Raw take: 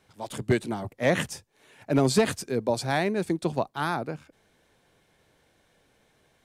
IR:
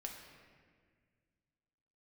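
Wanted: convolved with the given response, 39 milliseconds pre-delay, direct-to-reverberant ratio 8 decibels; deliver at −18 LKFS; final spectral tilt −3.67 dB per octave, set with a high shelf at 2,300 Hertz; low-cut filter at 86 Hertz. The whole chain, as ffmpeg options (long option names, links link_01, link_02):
-filter_complex "[0:a]highpass=86,highshelf=frequency=2300:gain=9,asplit=2[link_01][link_02];[1:a]atrim=start_sample=2205,adelay=39[link_03];[link_02][link_03]afir=irnorm=-1:irlink=0,volume=-5.5dB[link_04];[link_01][link_04]amix=inputs=2:normalize=0,volume=7dB"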